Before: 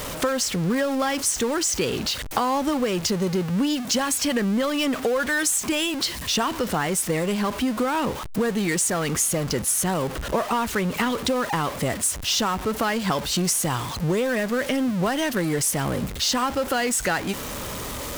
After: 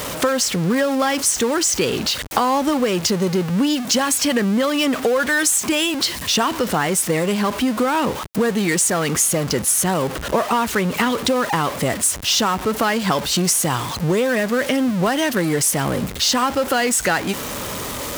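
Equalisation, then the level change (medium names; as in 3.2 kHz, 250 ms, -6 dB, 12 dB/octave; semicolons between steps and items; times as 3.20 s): high-pass 100 Hz 6 dB/octave; +5.0 dB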